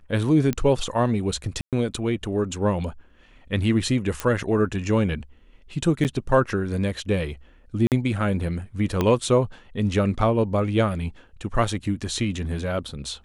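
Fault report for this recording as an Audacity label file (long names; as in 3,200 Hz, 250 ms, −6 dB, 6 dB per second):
0.530000	0.530000	click −12 dBFS
1.610000	1.730000	drop-out 117 ms
4.200000	4.200000	click −11 dBFS
6.040000	6.050000	drop-out 8.7 ms
7.870000	7.920000	drop-out 48 ms
9.010000	9.010000	click −9 dBFS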